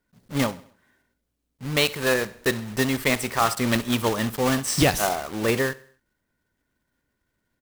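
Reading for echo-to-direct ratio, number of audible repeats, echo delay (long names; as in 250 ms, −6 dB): −19.5 dB, 3, 66 ms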